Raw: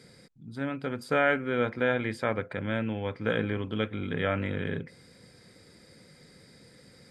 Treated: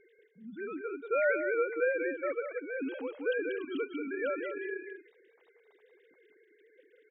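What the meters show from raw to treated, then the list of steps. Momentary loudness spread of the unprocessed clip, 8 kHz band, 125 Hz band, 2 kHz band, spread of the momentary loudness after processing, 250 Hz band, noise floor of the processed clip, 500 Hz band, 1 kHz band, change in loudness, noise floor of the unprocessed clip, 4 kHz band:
9 LU, no reading, under -30 dB, -3.5 dB, 13 LU, -7.5 dB, -67 dBFS, -1.0 dB, -7.0 dB, -3.5 dB, -56 dBFS, -14.0 dB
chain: formants replaced by sine waves; delay 187 ms -7 dB; trim -4.5 dB

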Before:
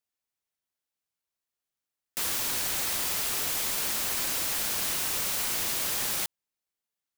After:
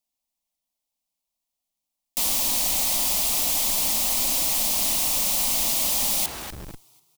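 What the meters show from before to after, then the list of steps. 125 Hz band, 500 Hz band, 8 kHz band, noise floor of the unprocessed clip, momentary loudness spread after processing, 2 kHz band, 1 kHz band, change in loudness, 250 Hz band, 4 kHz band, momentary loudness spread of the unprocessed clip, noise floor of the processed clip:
+4.5 dB, +4.5 dB, +7.0 dB, under -85 dBFS, 4 LU, 0.0 dB, +4.5 dB, +6.5 dB, +6.5 dB, +5.5 dB, 2 LU, -84 dBFS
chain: bass shelf 60 Hz +9 dB; static phaser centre 410 Hz, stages 6; frequency-shifting echo 245 ms, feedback 45%, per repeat +34 Hz, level -19 dB; in parallel at -9.5 dB: Schmitt trigger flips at -46.5 dBFS; on the sum: trim +5.5 dB

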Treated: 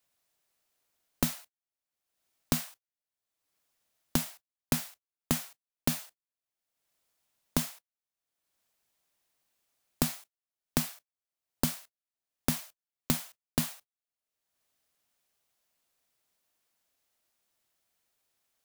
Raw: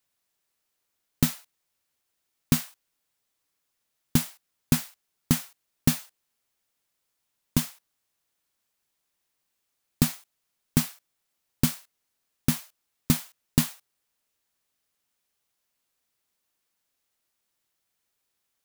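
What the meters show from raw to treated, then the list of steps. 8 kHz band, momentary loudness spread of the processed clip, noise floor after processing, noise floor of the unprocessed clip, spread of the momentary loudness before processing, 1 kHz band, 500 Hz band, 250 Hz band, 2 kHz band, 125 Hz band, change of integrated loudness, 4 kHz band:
-4.0 dB, 13 LU, under -85 dBFS, -79 dBFS, 14 LU, +0.5 dB, +1.0 dB, -7.0 dB, -3.0 dB, -9.0 dB, -5.5 dB, -3.5 dB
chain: gate -45 dBFS, range -31 dB; peaking EQ 660 Hz +5 dB 0.42 oct; in parallel at +2 dB: peak limiter -14.5 dBFS, peak gain reduction 9.5 dB; on the sum: saturation -7 dBFS, distortion -16 dB; three bands compressed up and down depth 100%; trim -6 dB

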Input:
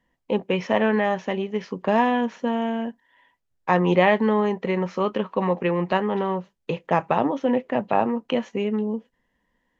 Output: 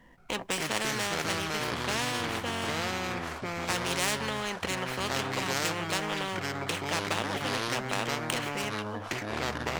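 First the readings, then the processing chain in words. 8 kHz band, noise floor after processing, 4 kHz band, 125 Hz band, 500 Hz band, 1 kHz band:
no reading, -40 dBFS, +6.0 dB, -6.0 dB, -12.0 dB, -8.0 dB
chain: median filter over 9 samples; ever faster or slower copies 177 ms, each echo -5 st, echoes 3; spectrum-flattening compressor 4:1; trim -6.5 dB

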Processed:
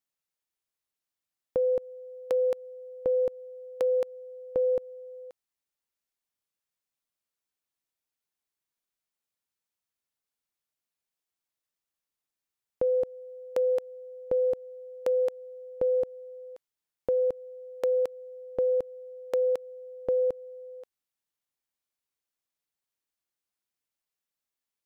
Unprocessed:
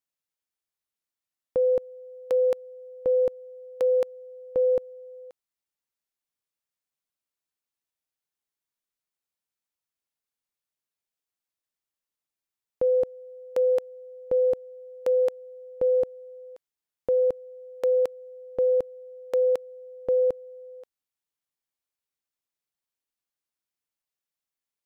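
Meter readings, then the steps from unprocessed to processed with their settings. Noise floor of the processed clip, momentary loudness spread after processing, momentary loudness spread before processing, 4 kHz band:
under -85 dBFS, 17 LU, 20 LU, no reading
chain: compression 3:1, threshold -24 dBFS, peak gain reduction 3.5 dB

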